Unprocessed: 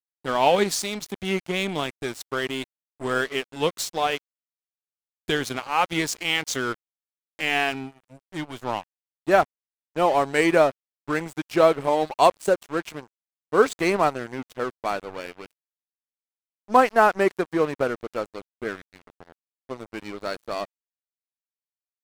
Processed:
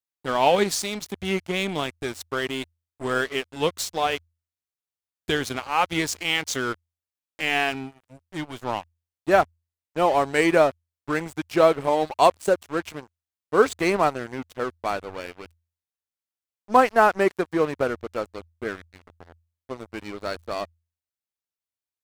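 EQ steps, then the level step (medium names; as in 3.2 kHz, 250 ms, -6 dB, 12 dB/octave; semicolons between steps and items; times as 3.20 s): peaking EQ 83 Hz +15 dB 0.2 oct; 0.0 dB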